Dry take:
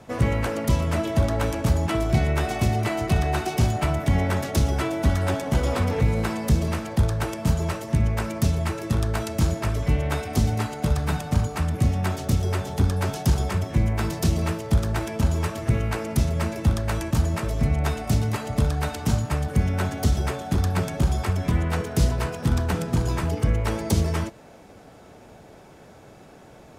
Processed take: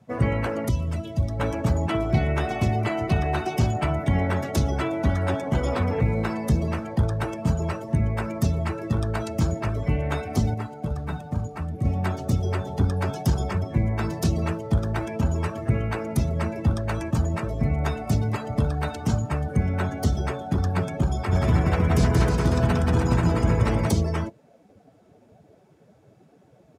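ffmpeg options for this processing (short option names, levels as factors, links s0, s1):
-filter_complex "[0:a]asettb=1/sr,asplit=3[s0][s1][s2];[s0]atrim=end=0.694[s3];[s1]atrim=start=0.69:end=1.4,asetpts=PTS-STARTPTS,afade=t=in:d=0.004:c=qsin,afade=t=out:st=0.706:d=0.004:c=qsin,acrossover=split=170|3000[s4][s5][s6];[s5]acompressor=threshold=0.00794:ratio=2:attack=3.2:release=140:knee=2.83:detection=peak[s7];[s4][s7][s6]amix=inputs=3:normalize=0[s8];[s2]atrim=start=1.396[s9];[s3][s8]acrossfade=d=0.004:c1=hsin:c2=qsin[s10];[s10][s9]acrossfade=d=0.004:c1=qsin:c2=hsin,asplit=3[s11][s12][s13];[s11]afade=t=out:st=21.31:d=0.02[s14];[s12]aecho=1:1:180|315|416.2|492.2|549.1|591.9:0.794|0.631|0.501|0.398|0.316|0.251,afade=t=in:st=21.31:d=0.02,afade=t=out:st=23.89:d=0.02[s15];[s13]afade=t=in:st=23.89:d=0.02[s16];[s14][s15][s16]amix=inputs=3:normalize=0,asplit=3[s17][s18][s19];[s17]atrim=end=10.542[s20];[s18]atrim=start=10.538:end=11.852,asetpts=PTS-STARTPTS,volume=0.596[s21];[s19]atrim=start=11.848[s22];[s20][s21]acrossfade=d=0.004:c1=hsin:c2=hsin[s23];[s23][s22]acrossfade=d=0.004:c1=hsin:c2=hsin,highpass=65,afftdn=nr=15:nf=-37"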